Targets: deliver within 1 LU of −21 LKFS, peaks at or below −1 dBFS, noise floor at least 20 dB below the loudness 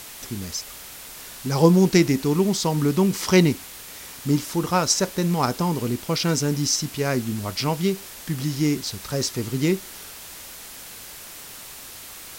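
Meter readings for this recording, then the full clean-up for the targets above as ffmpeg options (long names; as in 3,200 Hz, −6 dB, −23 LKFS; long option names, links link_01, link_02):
background noise floor −40 dBFS; target noise floor −43 dBFS; integrated loudness −22.5 LKFS; sample peak −3.5 dBFS; target loudness −21.0 LKFS
→ -af "afftdn=noise_reduction=6:noise_floor=-40"
-af "volume=1.5dB"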